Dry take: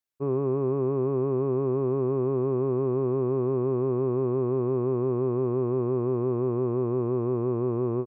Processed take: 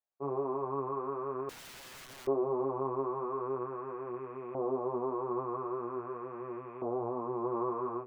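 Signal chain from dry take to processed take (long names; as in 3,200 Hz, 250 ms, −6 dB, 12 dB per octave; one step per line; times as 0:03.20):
multi-voice chorus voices 4, 0.48 Hz, delay 18 ms, depth 4.3 ms
auto-filter band-pass saw up 0.44 Hz 680–2,200 Hz
0:01.49–0:02.27: wrap-around overflow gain 53 dB
level +8 dB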